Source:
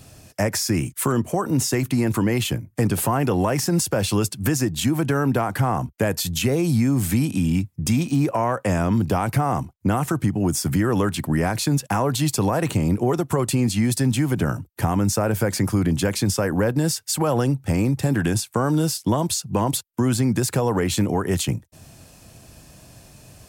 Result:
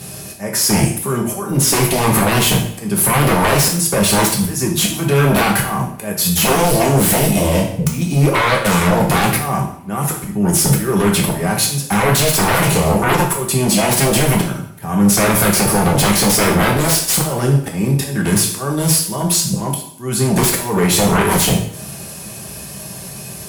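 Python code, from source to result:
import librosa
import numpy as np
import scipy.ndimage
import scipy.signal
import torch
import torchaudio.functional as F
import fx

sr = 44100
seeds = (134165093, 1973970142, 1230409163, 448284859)

y = scipy.signal.sosfilt(scipy.signal.butter(2, 80.0, 'highpass', fs=sr, output='sos'), x)
y = fx.peak_eq(y, sr, hz=11000.0, db=13.0, octaves=0.22)
y = y + 0.49 * np.pad(y, (int(5.1 * sr / 1000.0), 0))[:len(y)]
y = fx.auto_swell(y, sr, attack_ms=485.0)
y = fx.fold_sine(y, sr, drive_db=16, ceiling_db=-5.0)
y = fx.rev_double_slope(y, sr, seeds[0], early_s=0.58, late_s=1.9, knee_db=-27, drr_db=-1.0)
y = F.gain(torch.from_numpy(y), -8.5).numpy()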